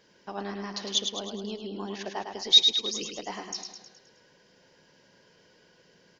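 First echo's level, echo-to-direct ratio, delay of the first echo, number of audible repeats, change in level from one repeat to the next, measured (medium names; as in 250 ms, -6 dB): -6.0 dB, -4.5 dB, 105 ms, 6, -5.5 dB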